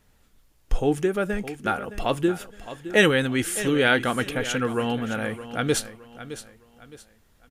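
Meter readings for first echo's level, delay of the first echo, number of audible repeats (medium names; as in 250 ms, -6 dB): -13.5 dB, 615 ms, 3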